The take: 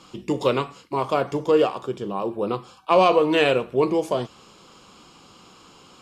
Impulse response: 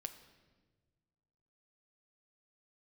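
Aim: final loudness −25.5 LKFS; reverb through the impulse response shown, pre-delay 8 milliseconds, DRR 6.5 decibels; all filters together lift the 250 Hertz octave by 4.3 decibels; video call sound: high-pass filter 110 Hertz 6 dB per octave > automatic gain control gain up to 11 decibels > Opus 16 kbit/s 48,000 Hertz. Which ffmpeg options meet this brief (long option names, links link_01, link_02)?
-filter_complex "[0:a]equalizer=frequency=250:width_type=o:gain=7,asplit=2[link_01][link_02];[1:a]atrim=start_sample=2205,adelay=8[link_03];[link_02][link_03]afir=irnorm=-1:irlink=0,volume=-3dB[link_04];[link_01][link_04]amix=inputs=2:normalize=0,highpass=frequency=110:poles=1,dynaudnorm=maxgain=11dB,volume=-5dB" -ar 48000 -c:a libopus -b:a 16k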